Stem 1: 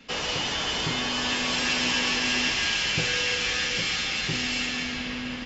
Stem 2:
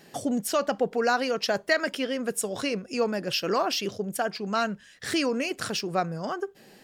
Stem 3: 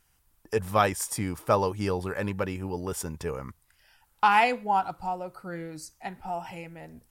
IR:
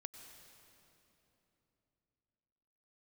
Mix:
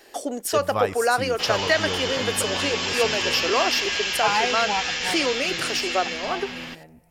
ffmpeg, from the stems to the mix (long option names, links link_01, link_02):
-filter_complex "[0:a]acrossover=split=340[link_01][link_02];[link_01]acompressor=threshold=-49dB:ratio=2[link_03];[link_03][link_02]amix=inputs=2:normalize=0,adelay=1300,volume=0dB[link_04];[1:a]highpass=frequency=320:width=0.5412,highpass=frequency=320:width=1.3066,acontrast=52,volume=-2.5dB[link_05];[2:a]volume=-4.5dB,asplit=2[link_06][link_07];[link_07]volume=-6.5dB[link_08];[3:a]atrim=start_sample=2205[link_09];[link_08][link_09]afir=irnorm=-1:irlink=0[link_10];[link_04][link_05][link_06][link_10]amix=inputs=4:normalize=0"